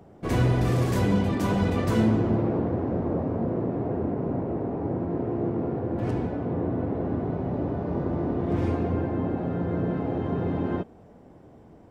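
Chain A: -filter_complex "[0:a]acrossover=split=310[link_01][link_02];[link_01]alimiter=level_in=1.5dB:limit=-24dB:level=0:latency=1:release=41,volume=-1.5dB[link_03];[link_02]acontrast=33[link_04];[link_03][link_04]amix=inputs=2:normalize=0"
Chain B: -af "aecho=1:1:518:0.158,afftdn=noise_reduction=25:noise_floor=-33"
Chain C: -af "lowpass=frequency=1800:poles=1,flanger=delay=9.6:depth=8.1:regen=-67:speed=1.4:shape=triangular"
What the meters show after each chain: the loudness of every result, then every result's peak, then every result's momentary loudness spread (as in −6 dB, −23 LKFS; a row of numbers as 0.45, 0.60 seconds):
−25.5, −27.0, −31.5 LKFS; −11.5, −10.5, −15.0 dBFS; 3, 6, 6 LU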